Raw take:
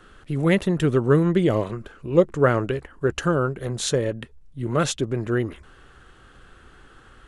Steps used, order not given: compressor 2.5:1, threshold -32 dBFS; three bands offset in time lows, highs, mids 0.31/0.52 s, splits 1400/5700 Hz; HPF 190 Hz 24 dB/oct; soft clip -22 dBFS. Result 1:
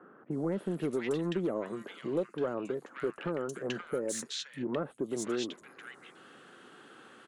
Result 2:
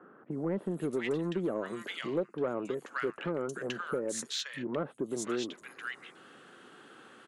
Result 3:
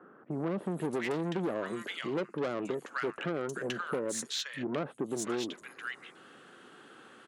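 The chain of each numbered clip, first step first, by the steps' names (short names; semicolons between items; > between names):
HPF > compressor > soft clip > three bands offset in time; three bands offset in time > compressor > HPF > soft clip; three bands offset in time > soft clip > HPF > compressor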